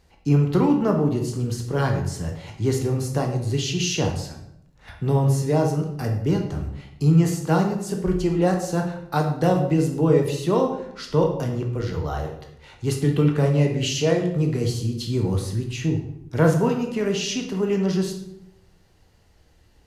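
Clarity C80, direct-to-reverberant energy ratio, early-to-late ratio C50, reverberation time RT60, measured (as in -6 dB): 9.5 dB, 2.0 dB, 6.0 dB, 0.80 s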